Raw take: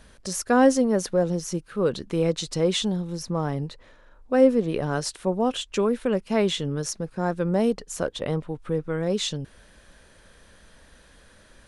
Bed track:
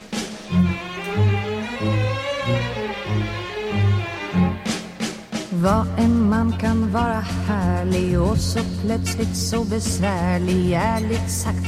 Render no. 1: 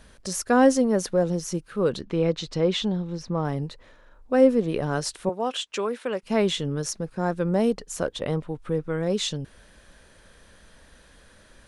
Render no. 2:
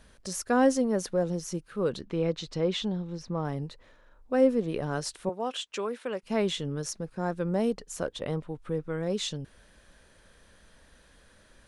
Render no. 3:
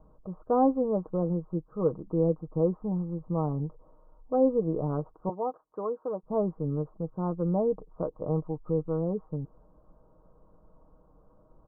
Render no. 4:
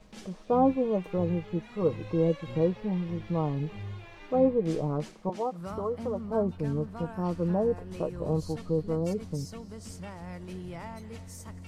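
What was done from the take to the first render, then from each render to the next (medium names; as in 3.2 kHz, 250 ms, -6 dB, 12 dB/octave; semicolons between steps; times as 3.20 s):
2.01–3.45 s: low-pass 4.3 kHz; 5.29–6.23 s: frequency weighting A
trim -5 dB
steep low-pass 1.2 kHz 72 dB/octave; comb 6.4 ms, depth 53%
add bed track -21 dB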